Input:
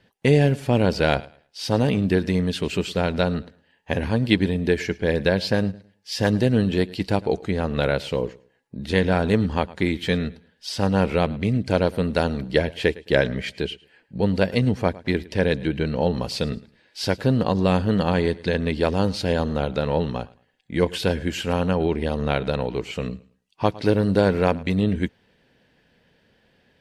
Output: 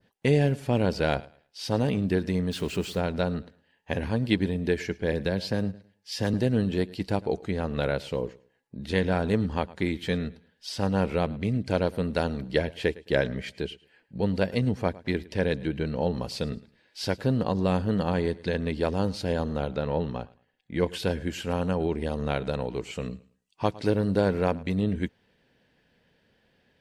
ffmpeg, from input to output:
ffmpeg -i in.wav -filter_complex "[0:a]asettb=1/sr,asplit=3[link_01][link_02][link_03];[link_01]atrim=end=2.514[link_04];[link_02]atrim=start=2.51:end=3,asetpts=PTS-STARTPTS,afade=type=in:duration=0.004:curve=qsin,afade=type=out:start_time=0.486:duration=0.004:curve=qsin,aeval=exprs='val(0)+0.5*0.0178*sgn(val(0))':channel_layout=same[link_05];[link_03]atrim=start=2.996[link_06];[link_04][link_05]acrossfade=duration=0.004:curve1=hsin:curve2=qsin[link_07];[link_07][link_06]acrossfade=duration=0.004:curve1=qsin:curve2=hsin,asettb=1/sr,asplit=3[link_08][link_09][link_10];[link_08]atrim=end=5.124[link_11];[link_09]atrim=start=5.12:end=6.34,asetpts=PTS-STARTPTS,afade=type=in:duration=0.004:curve=qsin,afade=type=out:start_time=1.216:duration=0.004:curve=qsin,acrossover=split=350|3000[link_12][link_13][link_14];[link_13]acompressor=threshold=-24dB:ratio=2:attack=3.2:release=140:knee=2.83:detection=peak[link_15];[link_12][link_15][link_14]amix=inputs=3:normalize=0[link_16];[link_10]atrim=start=6.336[link_17];[link_11][link_16]acrossfade=duration=0.004:curve1=hsin:curve2=qsin[link_18];[link_18][link_17]acrossfade=duration=0.004:curve1=qsin:curve2=hsin,asettb=1/sr,asplit=3[link_19][link_20][link_21];[link_19]atrim=end=19.744[link_22];[link_20]atrim=start=19.74:end=20.84,asetpts=PTS-STARTPTS,afade=type=in:duration=0.004:curve=qsin,afade=type=out:start_time=1.096:duration=0.004:curve=qsin,highshelf=frequency=6300:gain=-9[link_23];[link_21]atrim=start=20.836[link_24];[link_22][link_23]acrossfade=duration=0.004:curve1=hsin:curve2=qsin[link_25];[link_25][link_24]acrossfade=duration=0.004:curve1=qsin:curve2=hsin,asettb=1/sr,asplit=3[link_26][link_27][link_28];[link_26]atrim=end=21.614[link_29];[link_27]atrim=start=21.61:end=23.89,asetpts=PTS-STARTPTS,afade=type=in:duration=0.004:curve=qsin,afade=type=out:start_time=2.276:duration=0.004:curve=qsin,equalizer=frequency=7800:width_type=o:width=0.65:gain=6[link_30];[link_28]atrim=start=23.886[link_31];[link_29][link_30]acrossfade=duration=0.004:curve1=hsin:curve2=qsin[link_32];[link_32][link_31]acrossfade=duration=0.004:curve1=qsin:curve2=hsin,adynamicequalizer=threshold=0.0126:dfrequency=2900:dqfactor=0.73:tfrequency=2900:tqfactor=0.73:attack=5:release=100:ratio=0.375:range=2:mode=cutabove:tftype=bell,volume=-5dB" out.wav

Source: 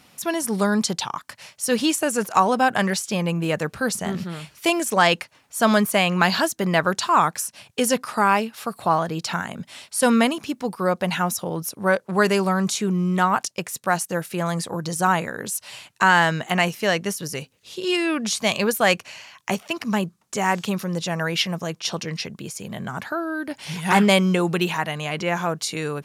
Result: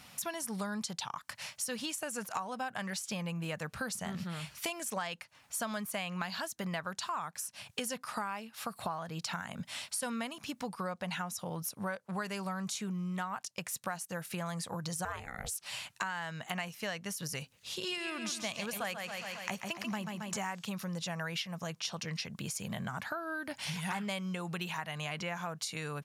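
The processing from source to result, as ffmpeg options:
ffmpeg -i in.wav -filter_complex "[0:a]asettb=1/sr,asplit=3[link_01][link_02][link_03];[link_01]atrim=end=10.674[link_04];[link_02]atrim=start=10.67:end=11.4,asetpts=PTS-STARTPTS,afade=type=in:duration=0.004:curve=qsin,afade=type=out:start_time=0.726:duration=0.004:curve=qsin,lowpass=11000[link_05];[link_03]atrim=start=11.396[link_06];[link_04][link_05]acrossfade=duration=0.004:curve1=hsin:curve2=qsin[link_07];[link_07][link_06]acrossfade=duration=0.004:curve1=qsin:curve2=hsin,asettb=1/sr,asplit=3[link_08][link_09][link_10];[link_08]atrim=end=15.054[link_11];[link_09]atrim=start=15.05:end=15.66,asetpts=PTS-STARTPTS,afade=type=in:duration=0.004:curve=qsin,afade=type=out:start_time=0.606:duration=0.004:curve=qsin,aeval=exprs='val(0)*sin(2*PI*270*n/s)':channel_layout=same[link_12];[link_10]atrim=start=15.656[link_13];[link_11][link_12]acrossfade=duration=0.004:curve1=hsin:curve2=qsin[link_14];[link_14][link_13]acrossfade=duration=0.004:curve1=qsin:curve2=hsin,asplit=3[link_15][link_16][link_17];[link_15]afade=type=out:start_time=17.87:duration=0.02[link_18];[link_16]aecho=1:1:136|272|408|544|680|816:0.422|0.202|0.0972|0.0466|0.0224|0.0107,afade=type=in:start_time=17.87:duration=0.02,afade=type=out:start_time=20.41:duration=0.02[link_19];[link_17]afade=type=in:start_time=20.41:duration=0.02[link_20];[link_18][link_19][link_20]amix=inputs=3:normalize=0,equalizer=frequency=360:width=1.4:gain=-10,acompressor=threshold=-35dB:ratio=8" out.wav

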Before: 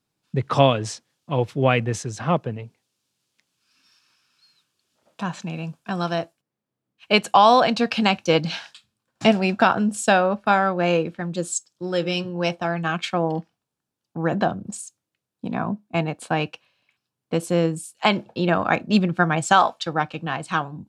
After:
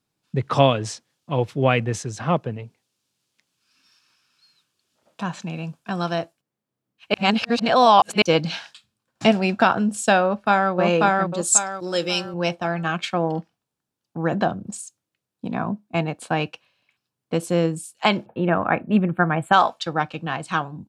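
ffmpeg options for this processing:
ffmpeg -i in.wav -filter_complex "[0:a]asplit=2[link_01][link_02];[link_02]afade=type=in:start_time=10.24:duration=0.01,afade=type=out:start_time=10.72:duration=0.01,aecho=0:1:540|1080|1620|2160|2700:0.944061|0.330421|0.115647|0.0404766|0.0141668[link_03];[link_01][link_03]amix=inputs=2:normalize=0,asettb=1/sr,asplit=3[link_04][link_05][link_06];[link_04]atrim=end=11.414[link_07];[link_05]atrim=start=11.41:end=12.34,asetpts=PTS-STARTPTS,afade=type=in:duration=0.004:curve=qsin,afade=type=out:start_time=0.926:duration=0.004:curve=qsin,bass=frequency=250:gain=-6,treble=frequency=4000:gain=11[link_08];[link_06]atrim=start=12.336[link_09];[link_07][link_08]acrossfade=duration=0.004:curve1=hsin:curve2=qsin[link_10];[link_10][link_09]acrossfade=duration=0.004:curve1=qsin:curve2=hsin,asplit=3[link_11][link_12][link_13];[link_11]afade=type=out:start_time=18.25:duration=0.02[link_14];[link_12]asuperstop=centerf=5500:order=4:qfactor=0.59,afade=type=in:start_time=18.25:duration=0.02,afade=type=out:start_time=19.52:duration=0.02[link_15];[link_13]afade=type=in:start_time=19.52:duration=0.02[link_16];[link_14][link_15][link_16]amix=inputs=3:normalize=0,asplit=3[link_17][link_18][link_19];[link_17]atrim=end=7.142[link_20];[link_18]atrim=start=7.138:end=8.222,asetpts=PTS-STARTPTS,areverse[link_21];[link_19]atrim=start=8.218[link_22];[link_20][link_21]acrossfade=duration=0.004:curve1=hsin:curve2=hsin[link_23];[link_23][link_22]acrossfade=duration=0.004:curve1=hsin:curve2=hsin" out.wav

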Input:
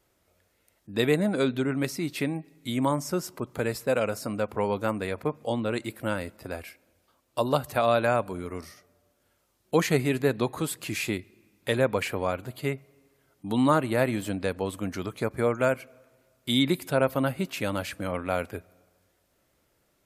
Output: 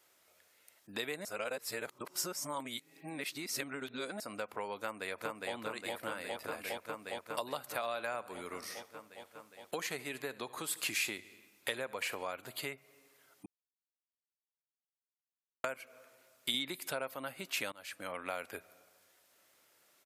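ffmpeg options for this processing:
ffmpeg -i in.wav -filter_complex "[0:a]asplit=2[link_01][link_02];[link_02]afade=type=in:start_time=4.8:duration=0.01,afade=type=out:start_time=5.54:duration=0.01,aecho=0:1:410|820|1230|1640|2050|2460|2870|3280|3690|4100|4510|4920:0.891251|0.668438|0.501329|0.375996|0.281997|0.211498|0.158624|0.118968|0.0892257|0.0669193|0.0501895|0.0376421[link_03];[link_01][link_03]amix=inputs=2:normalize=0,asettb=1/sr,asplit=3[link_04][link_05][link_06];[link_04]atrim=end=7.574[link_07];[link_05]atrim=start=7.57:end=12.25,asetpts=PTS-STARTPTS,afade=type=in:duration=0.004:curve=qsin,afade=type=out:start_time=4.676:duration=0.004:curve=qsin,aecho=1:1:74|148|222|296:0.0891|0.0481|0.026|0.014,atrim=end_sample=206388[link_08];[link_06]atrim=start=12.246[link_09];[link_07][link_08]acrossfade=duration=0.004:curve1=hsin:curve2=qsin[link_10];[link_10][link_09]acrossfade=duration=0.004:curve1=qsin:curve2=hsin,asettb=1/sr,asplit=3[link_11][link_12][link_13];[link_11]atrim=end=16.544[link_14];[link_12]atrim=start=16.54:end=17.16,asetpts=PTS-STARTPTS,afade=type=in:duration=0.004:curve=qsin,afade=type=out:start_time=0.616:duration=0.004:curve=qsin,acontrast=28[link_15];[link_13]atrim=start=17.156[link_16];[link_14][link_15]acrossfade=duration=0.004:curve1=hsin:curve2=qsin[link_17];[link_17][link_16]acrossfade=duration=0.004:curve1=qsin:curve2=hsin,asplit=6[link_18][link_19][link_20][link_21][link_22][link_23];[link_18]atrim=end=1.252[link_24];[link_19]atrim=start=1.248:end=4.202,asetpts=PTS-STARTPTS,areverse[link_25];[link_20]atrim=start=4.198:end=13.46,asetpts=PTS-STARTPTS,afade=type=out:start_time=9.258:duration=0.004:curve=hsin[link_26];[link_21]atrim=start=13.46:end=15.64,asetpts=PTS-STARTPTS,volume=0[link_27];[link_22]atrim=start=15.64:end=17.72,asetpts=PTS-STARTPTS,afade=type=in:duration=0.004:curve=hsin,afade=type=out:start_time=2.076:duration=0.004:curve=hsin:silence=0.0668344[link_28];[link_23]atrim=start=17.72,asetpts=PTS-STARTPTS,afade=type=in:duration=0.84:silence=0.0668344[link_29];[link_24][link_25]acrossfade=duration=0.004:curve1=hsin:curve2=hsin[link_30];[link_26][link_27][link_28][link_29]concat=n=4:v=0:a=1[link_31];[link_30][link_31]acrossfade=duration=0.004:curve1=hsin:curve2=hsin,acompressor=threshold=-34dB:ratio=6,highpass=frequency=1200:poles=1,volume=5dB" out.wav

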